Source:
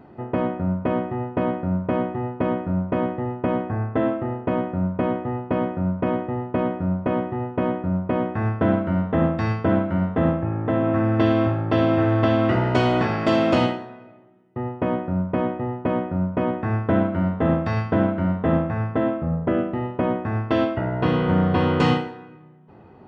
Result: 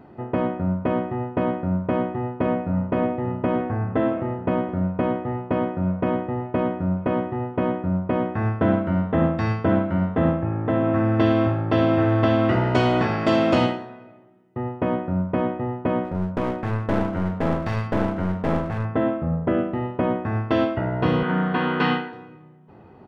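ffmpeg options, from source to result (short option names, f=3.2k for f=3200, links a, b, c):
-filter_complex "[0:a]asplit=2[a][b];[b]afade=t=in:st=1.85:d=0.01,afade=t=out:st=2.88:d=0.01,aecho=0:1:570|1140|1710|2280|2850|3420|3990|4560|5130|5700|6270|6840:0.281838|0.211379|0.158534|0.118901|0.0891754|0.0668815|0.0501612|0.0376209|0.0282157|0.0211617|0.0158713|0.0119035[c];[a][c]amix=inputs=2:normalize=0,asettb=1/sr,asplit=3[d][e][f];[d]atrim=end=16.044[g];[e]atrim=start=16.04:end=18.85,asetpts=PTS-STARTPTS,afade=t=in:d=0.004:c=qsin,afade=t=out:st=2.806:d=0.004:c=qsin,aeval=exprs='clip(val(0),-1,0.0473)':c=same[h];[f]atrim=start=18.846[i];[g][h]acrossfade=d=0.004:c1=hsin:c2=qsin[j];[j][i]acrossfade=d=0.004:c1=qsin:c2=hsin,asettb=1/sr,asplit=3[k][l][m];[k]atrim=end=21.234[n];[l]atrim=start=21.23:end=22.13,asetpts=PTS-STARTPTS,afade=t=in:d=0.004:c=qsin,afade=t=out:st=0.896:d=0.004:c=qsin,highpass=f=180:w=0.5412,highpass=f=180:w=1.3066,equalizer=f=320:t=q:w=4:g=-5,equalizer=f=550:t=q:w=4:g=-9,equalizer=f=1.6k:t=q:w=4:g=7,lowpass=f=4.1k:w=0.5412,lowpass=f=4.1k:w=1.3066[o];[m]atrim=start=22.126[p];[n][o]acrossfade=d=0.004:c1=hsin:c2=qsin[q];[q][p]acrossfade=d=0.004:c1=qsin:c2=hsin"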